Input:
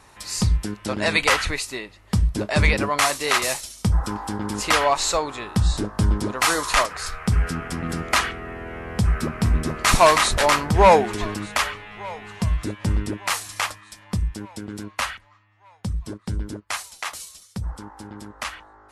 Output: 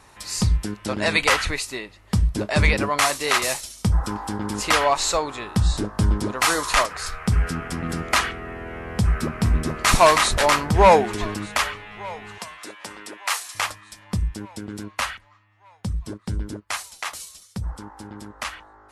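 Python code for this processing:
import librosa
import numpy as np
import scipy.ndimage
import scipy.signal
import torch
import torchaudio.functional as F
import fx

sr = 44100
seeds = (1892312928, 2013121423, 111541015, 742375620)

y = fx.highpass(x, sr, hz=660.0, slope=12, at=(12.38, 13.55))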